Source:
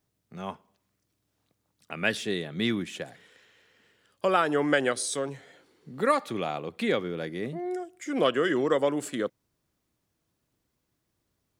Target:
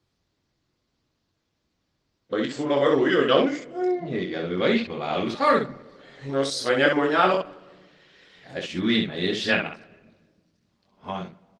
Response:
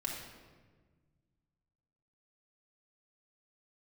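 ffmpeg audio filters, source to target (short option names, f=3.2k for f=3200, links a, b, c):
-filter_complex "[0:a]areverse,lowpass=f=4.7k:t=q:w=2.2,aecho=1:1:22|66:0.668|0.562,asplit=2[a][b];[1:a]atrim=start_sample=2205,lowpass=3.1k[c];[b][c]afir=irnorm=-1:irlink=0,volume=-16dB[d];[a][d]amix=inputs=2:normalize=0,volume=1.5dB" -ar 48000 -c:a libopus -b:a 20k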